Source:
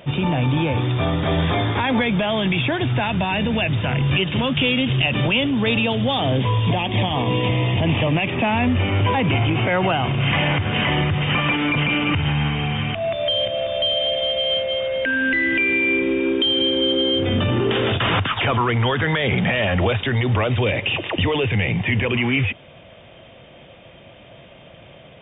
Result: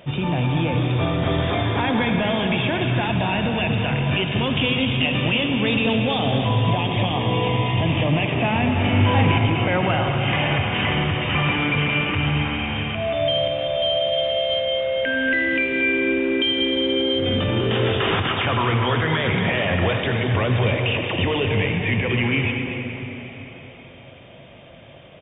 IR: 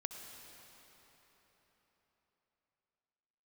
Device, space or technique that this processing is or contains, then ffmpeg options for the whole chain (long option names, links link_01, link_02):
cave: -filter_complex "[0:a]aecho=1:1:233:0.335[link_01];[1:a]atrim=start_sample=2205[link_02];[link_01][link_02]afir=irnorm=-1:irlink=0,asettb=1/sr,asplit=3[link_03][link_04][link_05];[link_03]atrim=end=8.804[link_06];[link_04]atrim=start=8.8:end=9.38,asetpts=PTS-STARTPTS,afade=type=in:duration=0.004:curve=qsin,afade=type=out:start_time=0.576:duration=0.004:curve=qsin,asplit=2[link_07][link_08];[link_08]adelay=40,volume=-2.5dB[link_09];[link_07][link_09]amix=inputs=2:normalize=0,atrim=end_sample=25578[link_10];[link_05]atrim=start=9.376[link_11];[link_06][link_10]acrossfade=duration=0.004:curve1=hsin:curve2=qsin[link_12];[link_12][link_11]acrossfade=duration=0.004:curve1=qsin:curve2=hsin"